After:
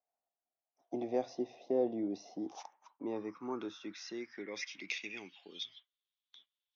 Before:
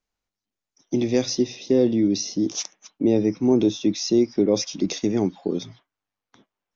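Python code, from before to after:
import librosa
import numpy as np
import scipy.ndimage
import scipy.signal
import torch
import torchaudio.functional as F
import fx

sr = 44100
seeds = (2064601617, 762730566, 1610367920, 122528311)

y = fx.dynamic_eq(x, sr, hz=630.0, q=2.1, threshold_db=-37.0, ratio=4.0, max_db=-6)
y = fx.filter_sweep_bandpass(y, sr, from_hz=700.0, to_hz=3500.0, start_s=2.22, end_s=5.86, q=7.6)
y = y * librosa.db_to_amplitude(7.5)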